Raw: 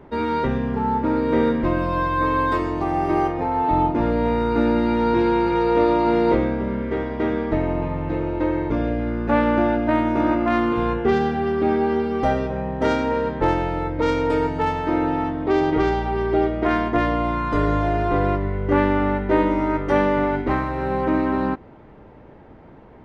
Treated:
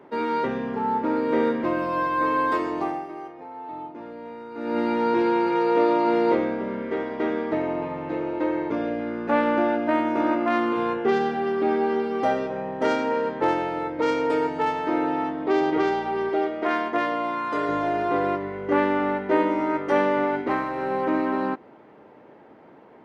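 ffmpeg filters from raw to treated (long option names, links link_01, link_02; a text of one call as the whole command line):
ffmpeg -i in.wav -filter_complex "[0:a]asettb=1/sr,asplit=3[link_01][link_02][link_03];[link_01]atrim=end=16.294[link_04];[link_02]atrim=start=16.29:end=17.69,asetpts=PTS-STARTPTS,afade=type=in:duration=0.004:curve=qsin,afade=type=out:start_time=1.396:duration=0.004:curve=qsin,lowshelf=frequency=230:gain=-9.5[link_05];[link_03]atrim=start=17.686[link_06];[link_04][link_05]acrossfade=duration=0.004:curve1=hsin:curve2=qsin[link_07];[link_07][link_06]acrossfade=duration=0.004:curve1=qsin:curve2=hsin,asplit=3[link_08][link_09][link_10];[link_08]atrim=end=3.15,asetpts=PTS-STARTPTS,afade=type=out:start_time=2.85:duration=0.3:curve=qua:silence=0.188365[link_11];[link_09]atrim=start=3.15:end=4.49,asetpts=PTS-STARTPTS,volume=-14.5dB[link_12];[link_10]atrim=start=4.49,asetpts=PTS-STARTPTS,afade=type=in:duration=0.3:curve=qua:silence=0.188365[link_13];[link_11][link_12][link_13]concat=n=3:v=0:a=1,highpass=260,bandreject=frequency=3700:width=28,volume=-1.5dB" out.wav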